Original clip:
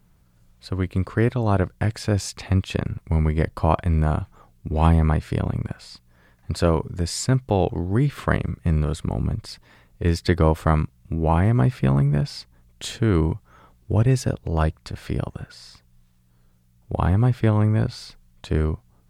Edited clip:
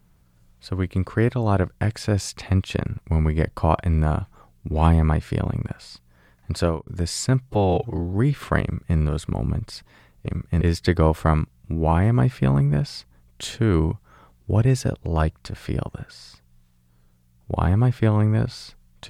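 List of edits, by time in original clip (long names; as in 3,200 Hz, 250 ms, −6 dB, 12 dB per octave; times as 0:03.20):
0:06.61–0:06.87: fade out
0:07.41–0:07.89: time-stretch 1.5×
0:08.39–0:08.74: duplicate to 0:10.02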